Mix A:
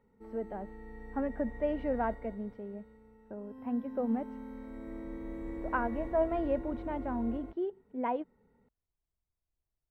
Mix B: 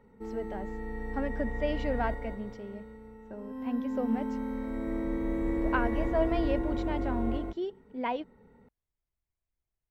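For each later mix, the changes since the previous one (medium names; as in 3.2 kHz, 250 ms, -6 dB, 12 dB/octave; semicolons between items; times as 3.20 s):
speech: remove low-pass 1.4 kHz 12 dB/octave; background +10.0 dB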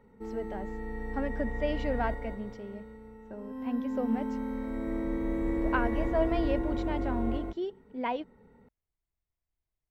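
no change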